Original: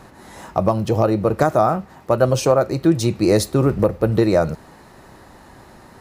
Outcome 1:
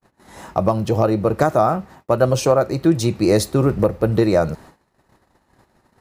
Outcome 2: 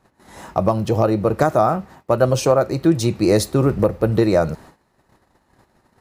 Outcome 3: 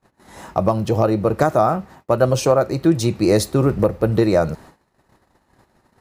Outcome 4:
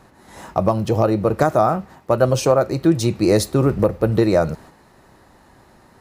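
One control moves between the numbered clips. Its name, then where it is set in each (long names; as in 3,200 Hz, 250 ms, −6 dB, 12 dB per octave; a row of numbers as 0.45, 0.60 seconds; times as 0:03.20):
noise gate, range: −49, −19, −32, −6 decibels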